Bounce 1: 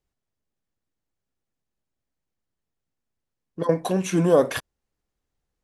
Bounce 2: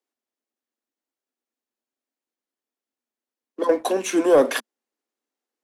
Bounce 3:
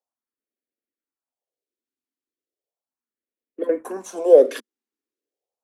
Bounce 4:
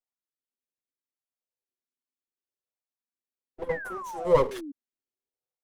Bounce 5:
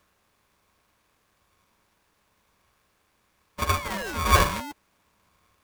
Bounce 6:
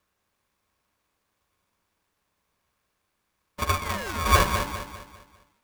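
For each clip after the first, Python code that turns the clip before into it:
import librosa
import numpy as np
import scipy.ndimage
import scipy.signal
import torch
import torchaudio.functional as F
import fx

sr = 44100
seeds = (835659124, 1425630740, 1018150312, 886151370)

y1 = scipy.signal.sosfilt(scipy.signal.butter(16, 220.0, 'highpass', fs=sr, output='sos'), x)
y1 = fx.leveller(y1, sr, passes=1)
y2 = fx.peak_eq(y1, sr, hz=510.0, db=13.0, octaves=2.0)
y2 = fx.phaser_stages(y2, sr, stages=4, low_hz=100.0, high_hz=1000.0, hz=0.36, feedback_pct=25)
y2 = y2 * librosa.db_to_amplitude(-8.5)
y3 = fx.lower_of_two(y2, sr, delay_ms=7.9)
y3 = fx.spec_paint(y3, sr, seeds[0], shape='fall', start_s=3.69, length_s=1.03, low_hz=270.0, high_hz=2100.0, level_db=-30.0)
y3 = y3 * librosa.db_to_amplitude(-8.0)
y4 = fx.bin_compress(y3, sr, power=0.6)
y4 = y4 * np.sign(np.sin(2.0 * np.pi * 580.0 * np.arange(len(y4)) / sr))
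y5 = fx.law_mismatch(y4, sr, coded='A')
y5 = fx.echo_feedback(y5, sr, ms=200, feedback_pct=40, wet_db=-8.0)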